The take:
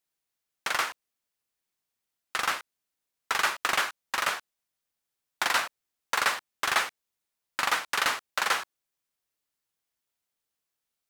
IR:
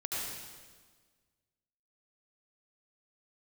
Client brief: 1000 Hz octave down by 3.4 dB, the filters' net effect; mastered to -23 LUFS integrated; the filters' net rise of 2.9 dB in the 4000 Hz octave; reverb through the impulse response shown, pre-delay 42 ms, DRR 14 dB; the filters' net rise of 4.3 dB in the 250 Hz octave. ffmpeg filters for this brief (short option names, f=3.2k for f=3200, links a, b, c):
-filter_complex "[0:a]equalizer=f=250:t=o:g=6,equalizer=f=1k:t=o:g=-5,equalizer=f=4k:t=o:g=4,asplit=2[a][b];[1:a]atrim=start_sample=2205,adelay=42[c];[b][c]afir=irnorm=-1:irlink=0,volume=-18dB[d];[a][d]amix=inputs=2:normalize=0,volume=5.5dB"